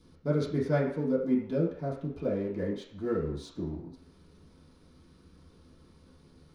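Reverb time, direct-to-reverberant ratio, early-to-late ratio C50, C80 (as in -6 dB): 0.55 s, -10.5 dB, 5.5 dB, 9.0 dB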